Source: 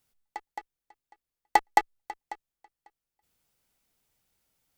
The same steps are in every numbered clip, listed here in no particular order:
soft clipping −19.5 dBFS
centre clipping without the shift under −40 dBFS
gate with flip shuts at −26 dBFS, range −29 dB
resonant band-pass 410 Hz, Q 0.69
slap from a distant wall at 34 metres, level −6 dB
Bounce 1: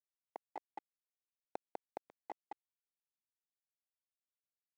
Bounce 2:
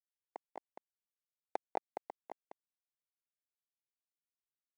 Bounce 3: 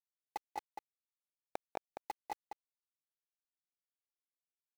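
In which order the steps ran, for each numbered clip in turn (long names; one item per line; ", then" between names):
slap from a distant wall, then soft clipping, then gate with flip, then centre clipping without the shift, then resonant band-pass
gate with flip, then slap from a distant wall, then centre clipping without the shift, then resonant band-pass, then soft clipping
resonant band-pass, then soft clipping, then gate with flip, then centre clipping without the shift, then slap from a distant wall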